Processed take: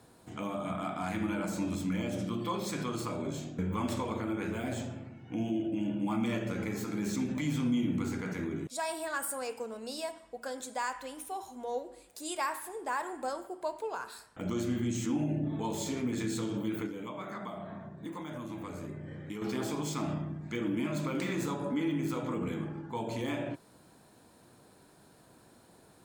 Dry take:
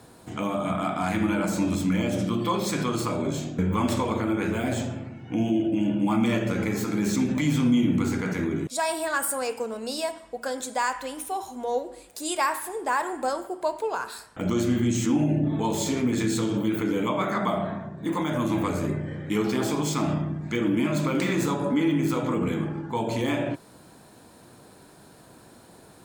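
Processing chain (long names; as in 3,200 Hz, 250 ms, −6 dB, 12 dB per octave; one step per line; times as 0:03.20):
0:16.86–0:19.42: downward compressor, threshold −29 dBFS, peak gain reduction 9 dB
level −8.5 dB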